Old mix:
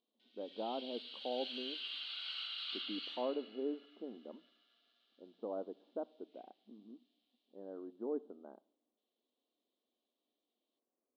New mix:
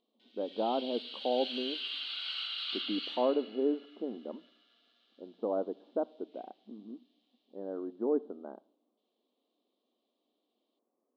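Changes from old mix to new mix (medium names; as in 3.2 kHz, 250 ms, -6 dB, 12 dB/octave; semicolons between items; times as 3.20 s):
speech +9.0 dB; background +5.5 dB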